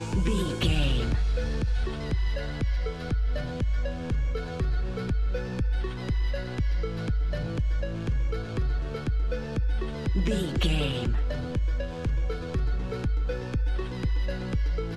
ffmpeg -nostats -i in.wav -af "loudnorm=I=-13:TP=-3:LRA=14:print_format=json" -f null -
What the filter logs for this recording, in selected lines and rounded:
"input_i" : "-29.8",
"input_tp" : "-11.4",
"input_lra" : "1.4",
"input_thresh" : "-39.8",